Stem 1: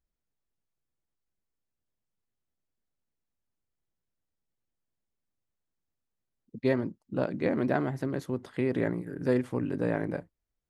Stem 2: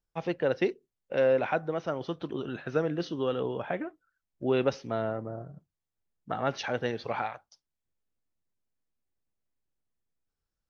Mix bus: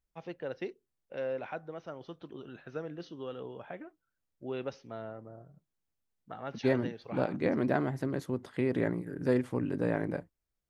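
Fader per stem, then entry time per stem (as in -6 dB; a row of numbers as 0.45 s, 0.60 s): -1.5 dB, -11.0 dB; 0.00 s, 0.00 s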